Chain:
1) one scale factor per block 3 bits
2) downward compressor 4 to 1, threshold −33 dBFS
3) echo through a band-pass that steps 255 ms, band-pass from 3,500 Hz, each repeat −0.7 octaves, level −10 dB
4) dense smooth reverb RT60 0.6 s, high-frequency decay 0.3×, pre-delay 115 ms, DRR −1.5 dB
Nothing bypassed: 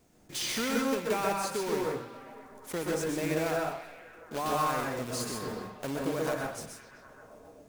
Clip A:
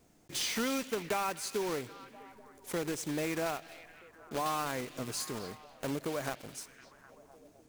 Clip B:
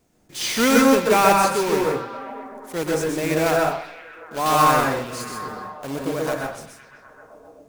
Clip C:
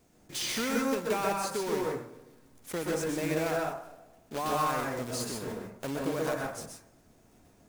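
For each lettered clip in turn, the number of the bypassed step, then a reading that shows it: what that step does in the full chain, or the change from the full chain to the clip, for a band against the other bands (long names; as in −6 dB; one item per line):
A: 4, 8 kHz band +3.0 dB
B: 2, average gain reduction 7.5 dB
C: 3, change in momentary loudness spread −4 LU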